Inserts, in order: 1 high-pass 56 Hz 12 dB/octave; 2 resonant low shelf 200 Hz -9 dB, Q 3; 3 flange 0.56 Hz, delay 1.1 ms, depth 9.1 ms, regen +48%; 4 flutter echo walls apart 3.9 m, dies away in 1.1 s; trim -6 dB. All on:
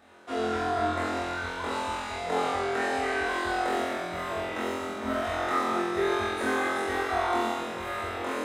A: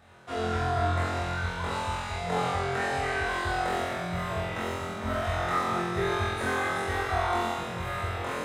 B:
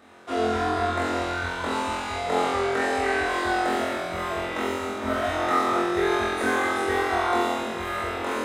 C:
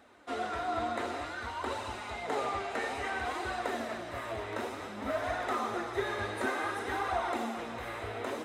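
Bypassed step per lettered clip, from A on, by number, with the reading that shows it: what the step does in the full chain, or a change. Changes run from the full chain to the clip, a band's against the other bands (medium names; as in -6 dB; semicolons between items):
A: 2, 125 Hz band +11.5 dB; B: 3, loudness change +4.0 LU; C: 4, echo-to-direct 5.0 dB to none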